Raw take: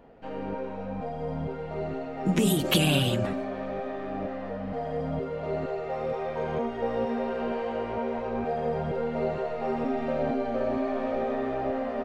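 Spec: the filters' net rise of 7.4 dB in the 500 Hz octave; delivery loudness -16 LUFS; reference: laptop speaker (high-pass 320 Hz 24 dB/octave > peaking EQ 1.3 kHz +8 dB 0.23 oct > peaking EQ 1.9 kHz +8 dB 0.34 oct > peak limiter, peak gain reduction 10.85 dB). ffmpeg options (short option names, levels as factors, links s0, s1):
-af "highpass=f=320:w=0.5412,highpass=f=320:w=1.3066,equalizer=f=500:t=o:g=9,equalizer=f=1300:t=o:w=0.23:g=8,equalizer=f=1900:t=o:w=0.34:g=8,volume=4.22,alimiter=limit=0.422:level=0:latency=1"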